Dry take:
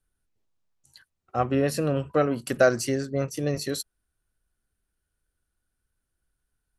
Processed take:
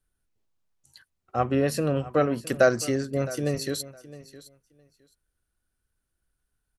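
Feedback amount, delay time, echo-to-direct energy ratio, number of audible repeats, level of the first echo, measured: 16%, 0.663 s, -17.5 dB, 2, -17.5 dB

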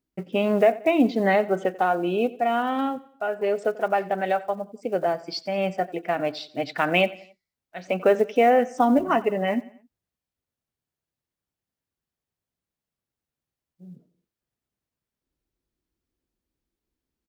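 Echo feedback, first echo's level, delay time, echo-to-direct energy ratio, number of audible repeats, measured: 43%, -19.5 dB, 90 ms, -18.5 dB, 3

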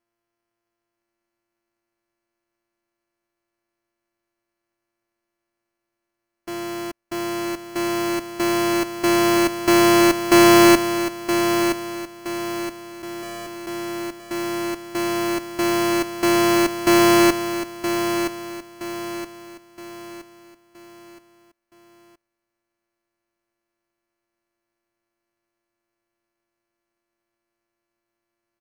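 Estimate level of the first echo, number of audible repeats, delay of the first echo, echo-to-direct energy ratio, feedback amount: -8.0 dB, 4, 0.97 s, -7.0 dB, 41%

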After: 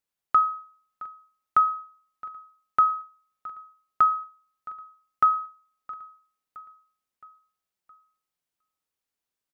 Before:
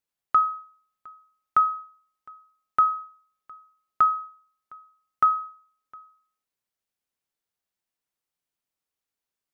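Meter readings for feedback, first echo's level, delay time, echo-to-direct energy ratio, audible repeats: 52%, -19.0 dB, 0.667 s, -17.5 dB, 3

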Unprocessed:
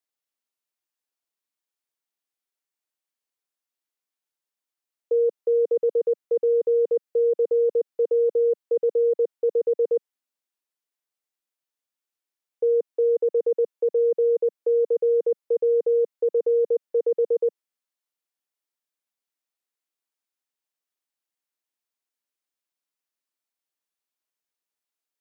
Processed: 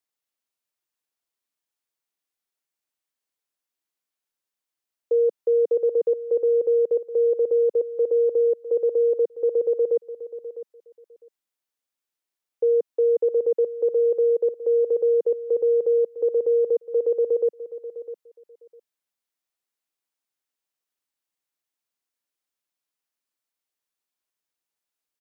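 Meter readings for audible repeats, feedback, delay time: 2, 17%, 0.654 s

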